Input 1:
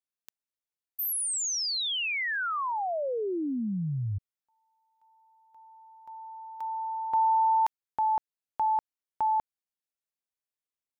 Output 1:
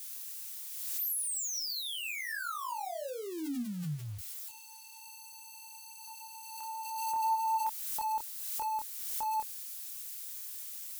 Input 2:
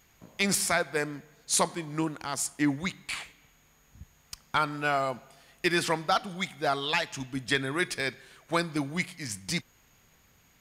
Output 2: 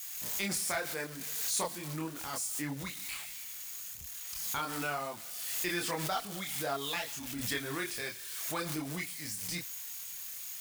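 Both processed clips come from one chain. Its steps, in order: zero-crossing glitches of -26.5 dBFS; chorus voices 4, 0.87 Hz, delay 27 ms, depth 2.1 ms; swell ahead of each attack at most 31 dB/s; trim -6 dB

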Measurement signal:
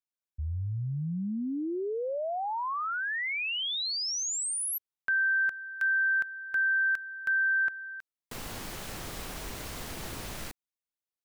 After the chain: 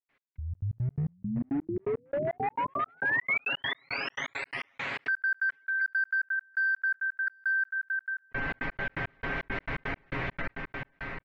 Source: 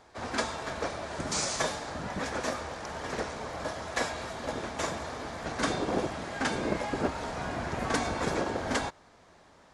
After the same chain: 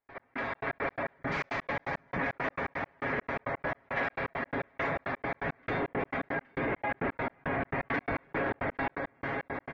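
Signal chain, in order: bass shelf 110 Hz -2 dB; comb 7.3 ms, depth 51%; echo that smears into a reverb 546 ms, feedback 69%, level -10.5 dB; spectral gate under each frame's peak -25 dB strong; hard clipper -28 dBFS; peaking EQ 1.6 kHz -3.5 dB 1.5 oct; level rider gain up to 14 dB; four-pole ladder low-pass 2.3 kHz, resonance 60%; trance gate ".x..xx.x.x" 169 bpm -60 dB; level flattener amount 50%; trim -4 dB

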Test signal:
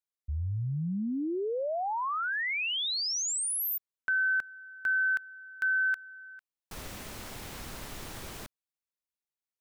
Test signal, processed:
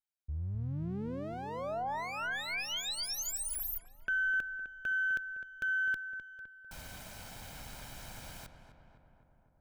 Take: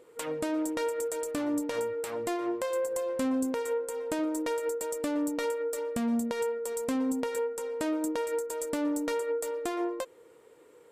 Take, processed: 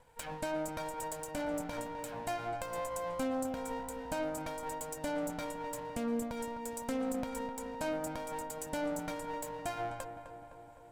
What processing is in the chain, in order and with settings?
comb filter that takes the minimum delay 1.3 ms; on a send: filtered feedback delay 256 ms, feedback 69%, low-pass 2 kHz, level -9 dB; on the sum: trim -4 dB

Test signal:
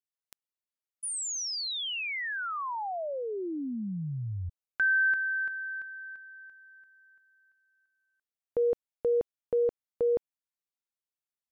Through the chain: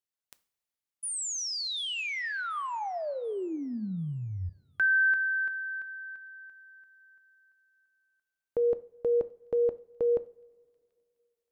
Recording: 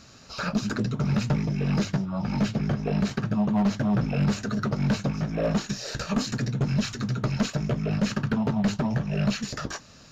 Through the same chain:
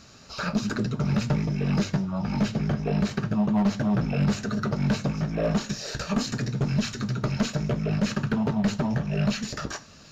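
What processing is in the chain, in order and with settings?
feedback echo behind a high-pass 736 ms, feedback 33%, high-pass 2.9 kHz, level -23 dB; two-slope reverb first 0.4 s, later 2.5 s, from -20 dB, DRR 12.5 dB

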